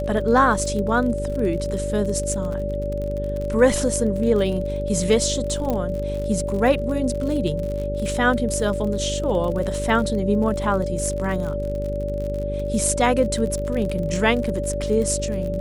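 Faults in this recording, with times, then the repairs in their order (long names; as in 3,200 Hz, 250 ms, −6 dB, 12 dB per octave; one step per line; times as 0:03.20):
mains buzz 50 Hz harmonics 10 −28 dBFS
surface crackle 47 per second −28 dBFS
whistle 580 Hz −26 dBFS
0:05.70: click −12 dBFS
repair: click removal
hum removal 50 Hz, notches 10
notch filter 580 Hz, Q 30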